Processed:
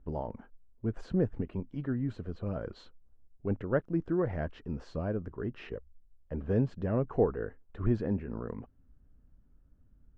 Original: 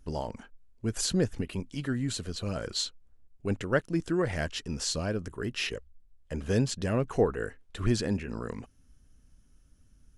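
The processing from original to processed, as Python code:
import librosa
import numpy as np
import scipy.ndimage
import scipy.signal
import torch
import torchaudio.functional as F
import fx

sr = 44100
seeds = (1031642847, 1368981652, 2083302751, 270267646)

y = scipy.signal.sosfilt(scipy.signal.butter(2, 1100.0, 'lowpass', fs=sr, output='sos'), x)
y = y * librosa.db_to_amplitude(-1.5)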